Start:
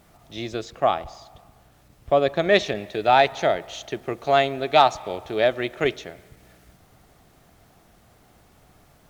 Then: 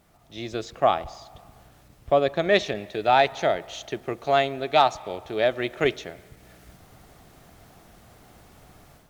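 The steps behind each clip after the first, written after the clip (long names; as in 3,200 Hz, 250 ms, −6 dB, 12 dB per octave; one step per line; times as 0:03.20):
automatic gain control gain up to 9.5 dB
level −5.5 dB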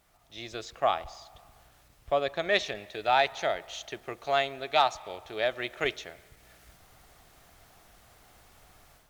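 parametric band 200 Hz −10.5 dB 3 octaves
level −2 dB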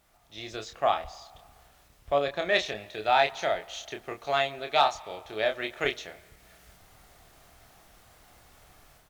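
double-tracking delay 28 ms −6 dB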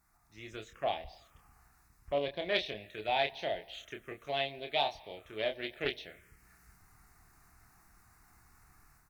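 phaser swept by the level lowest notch 530 Hz, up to 1,300 Hz, full sweep at −29.5 dBFS
highs frequency-modulated by the lows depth 0.19 ms
level −4 dB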